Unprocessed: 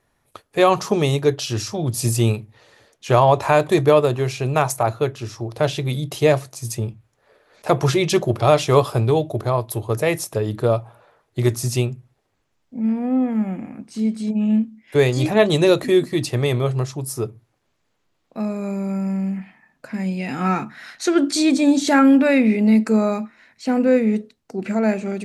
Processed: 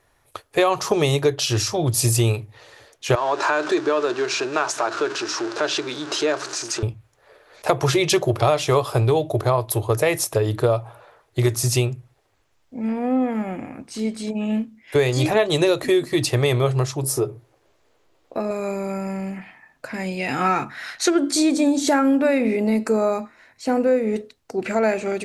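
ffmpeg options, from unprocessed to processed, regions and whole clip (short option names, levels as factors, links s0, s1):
-filter_complex "[0:a]asettb=1/sr,asplit=3[s0][s1][s2];[s0]atrim=end=3.154[s3];[s1]atrim=start=3.15:end=6.83,asetpts=PTS-STARTPTS,afade=t=in:d=0.004:c=qsin,afade=t=out:st=3.676:d=0.004:c=qsin,aeval=exprs='val(0)+0.5*0.0501*sgn(val(0))':c=same,acompressor=threshold=0.0794:ratio=2:attack=3.2:release=140:knee=1:detection=peak,highpass=f=260:w=0.5412,highpass=f=260:w=1.3066,equalizer=f=320:t=q:w=4:g=4,equalizer=f=520:t=q:w=4:g=-7,equalizer=f=760:t=q:w=4:g=-6,equalizer=f=1500:t=q:w=4:g=7,equalizer=f=2100:t=q:w=4:g=-6,equalizer=f=3200:t=q:w=4:g=-4,lowpass=f=6700:w=0.5412,lowpass=f=6700:w=1.3066[s4];[s2]atrim=start=6.826[s5];[s3][s4]acrossfade=d=0.004:c1=hsin:c2=qsin[s6];[s6][s5]acrossfade=d=0.004:c1=qsin:c2=hsin,asettb=1/sr,asplit=3[s7][s8][s9];[s7]atrim=end=17.034[s10];[s8]atrim=start=17.03:end=18.51,asetpts=PTS-STARTPTS,afade=t=in:d=0.004:c=qsin,afade=t=out:st=1.476:d=0.004:c=qsin,equalizer=f=430:w=0.74:g=8.5,acompressor=threshold=0.0631:ratio=2:attack=3.2:release=140:knee=1:detection=peak,asplit=2[s11][s12];[s12]adelay=15,volume=0.335[s13];[s11][s13]amix=inputs=2:normalize=0,atrim=end_sample=65268[s14];[s9]atrim=start=18.506[s15];[s10][s14]acrossfade=d=0.004:c1=hsin:c2=qsin[s16];[s16][s15]acrossfade=d=0.004:c1=qsin:c2=hsin,asettb=1/sr,asplit=3[s17][s18][s19];[s17]atrim=end=21.104[s20];[s18]atrim=start=21.1:end=24.16,asetpts=PTS-STARTPTS,afade=t=in:d=0.004:c=qsin,afade=t=out:st=3.056:d=0.004:c=qsin,equalizer=f=2900:t=o:w=2.3:g=-7,bandreject=f=261.6:t=h:w=4,bandreject=f=523.2:t=h:w=4,bandreject=f=784.8:t=h:w=4,bandreject=f=1046.4:t=h:w=4,bandreject=f=1308:t=h:w=4,bandreject=f=1569.6:t=h:w=4,bandreject=f=1831.2:t=h:w=4,bandreject=f=2092.8:t=h:w=4,bandreject=f=2354.4:t=h:w=4,bandreject=f=2616:t=h:w=4,bandreject=f=2877.6:t=h:w=4,bandreject=f=3139.2:t=h:w=4,bandreject=f=3400.8:t=h:w=4,bandreject=f=3662.4:t=h:w=4,bandreject=f=3924:t=h:w=4,bandreject=f=4185.6:t=h:w=4,bandreject=f=4447.2:t=h:w=4,bandreject=f=4708.8:t=h:w=4,bandreject=f=4970.4:t=h:w=4,bandreject=f=5232:t=h:w=4,bandreject=f=5493.6:t=h:w=4,bandreject=f=5755.2:t=h:w=4,bandreject=f=6016.8:t=h:w=4,bandreject=f=6278.4:t=h:w=4,bandreject=f=6540:t=h:w=4,bandreject=f=6801.6:t=h:w=4,bandreject=f=7063.2:t=h:w=4,bandreject=f=7324.8:t=h:w=4,bandreject=f=7586.4:t=h:w=4,bandreject=f=7848:t=h:w=4,bandreject=f=8109.6:t=h:w=4,bandreject=f=8371.2:t=h:w=4,bandreject=f=8632.8:t=h:w=4,bandreject=f=8894.4:t=h:w=4,bandreject=f=9156:t=h:w=4,bandreject=f=9417.6:t=h:w=4[s21];[s19]atrim=start=24.156[s22];[s20][s21]acrossfade=d=0.004:c1=hsin:c2=qsin[s23];[s23][s22]acrossfade=d=0.004:c1=qsin:c2=hsin,equalizer=f=200:t=o:w=0.75:g=-12,acompressor=threshold=0.1:ratio=6,volume=1.88"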